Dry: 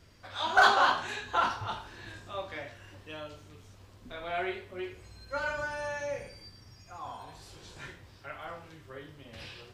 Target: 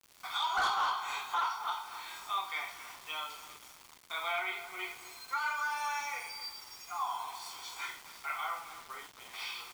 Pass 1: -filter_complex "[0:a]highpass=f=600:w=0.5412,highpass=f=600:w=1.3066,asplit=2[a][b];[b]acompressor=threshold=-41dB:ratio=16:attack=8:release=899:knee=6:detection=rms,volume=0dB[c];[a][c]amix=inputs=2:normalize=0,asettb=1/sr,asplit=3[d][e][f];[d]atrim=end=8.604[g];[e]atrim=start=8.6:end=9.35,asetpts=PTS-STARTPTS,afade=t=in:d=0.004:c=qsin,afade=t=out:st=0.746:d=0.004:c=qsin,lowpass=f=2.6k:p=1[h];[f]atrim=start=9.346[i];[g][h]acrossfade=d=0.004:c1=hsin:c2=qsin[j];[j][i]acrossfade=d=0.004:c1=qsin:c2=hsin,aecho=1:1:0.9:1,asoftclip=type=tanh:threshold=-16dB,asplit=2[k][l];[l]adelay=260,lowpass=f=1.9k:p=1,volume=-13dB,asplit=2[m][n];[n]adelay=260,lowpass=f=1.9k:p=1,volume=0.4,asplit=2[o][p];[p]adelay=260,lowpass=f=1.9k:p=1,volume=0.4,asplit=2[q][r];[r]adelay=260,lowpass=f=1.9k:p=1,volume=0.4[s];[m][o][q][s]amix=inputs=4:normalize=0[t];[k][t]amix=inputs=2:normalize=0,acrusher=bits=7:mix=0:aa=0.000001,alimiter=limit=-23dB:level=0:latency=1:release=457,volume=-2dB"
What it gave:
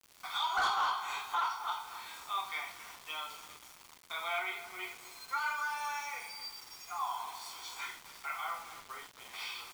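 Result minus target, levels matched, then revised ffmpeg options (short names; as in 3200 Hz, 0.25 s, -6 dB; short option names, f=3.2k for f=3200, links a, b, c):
compressor: peak gain reduction +9.5 dB
-filter_complex "[0:a]highpass=f=600:w=0.5412,highpass=f=600:w=1.3066,asplit=2[a][b];[b]acompressor=threshold=-31dB:ratio=16:attack=8:release=899:knee=6:detection=rms,volume=0dB[c];[a][c]amix=inputs=2:normalize=0,asettb=1/sr,asplit=3[d][e][f];[d]atrim=end=8.604[g];[e]atrim=start=8.6:end=9.35,asetpts=PTS-STARTPTS,afade=t=in:d=0.004:c=qsin,afade=t=out:st=0.746:d=0.004:c=qsin,lowpass=f=2.6k:p=1[h];[f]atrim=start=9.346[i];[g][h]acrossfade=d=0.004:c1=hsin:c2=qsin[j];[j][i]acrossfade=d=0.004:c1=qsin:c2=hsin,aecho=1:1:0.9:1,asoftclip=type=tanh:threshold=-16dB,asplit=2[k][l];[l]adelay=260,lowpass=f=1.9k:p=1,volume=-13dB,asplit=2[m][n];[n]adelay=260,lowpass=f=1.9k:p=1,volume=0.4,asplit=2[o][p];[p]adelay=260,lowpass=f=1.9k:p=1,volume=0.4,asplit=2[q][r];[r]adelay=260,lowpass=f=1.9k:p=1,volume=0.4[s];[m][o][q][s]amix=inputs=4:normalize=0[t];[k][t]amix=inputs=2:normalize=0,acrusher=bits=7:mix=0:aa=0.000001,alimiter=limit=-23dB:level=0:latency=1:release=457,volume=-2dB"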